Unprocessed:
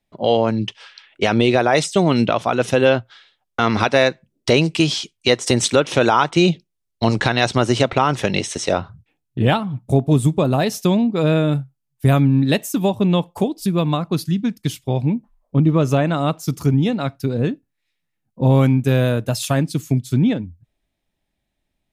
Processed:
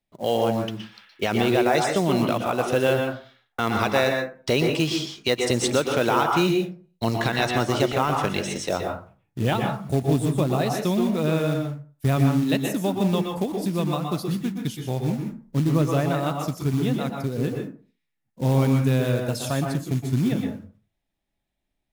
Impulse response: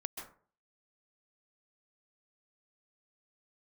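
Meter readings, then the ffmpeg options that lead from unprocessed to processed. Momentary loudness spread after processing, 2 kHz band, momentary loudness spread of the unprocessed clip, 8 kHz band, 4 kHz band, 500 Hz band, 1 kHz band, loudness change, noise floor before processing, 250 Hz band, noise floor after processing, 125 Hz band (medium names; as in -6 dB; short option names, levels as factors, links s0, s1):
8 LU, -5.0 dB, 7 LU, -5.5 dB, -6.0 dB, -5.0 dB, -4.5 dB, -5.5 dB, -76 dBFS, -5.0 dB, -78 dBFS, -5.5 dB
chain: -filter_complex "[0:a]acrusher=bits=5:mode=log:mix=0:aa=0.000001[s0];[1:a]atrim=start_sample=2205,asetrate=48510,aresample=44100[s1];[s0][s1]afir=irnorm=-1:irlink=0,volume=0.668"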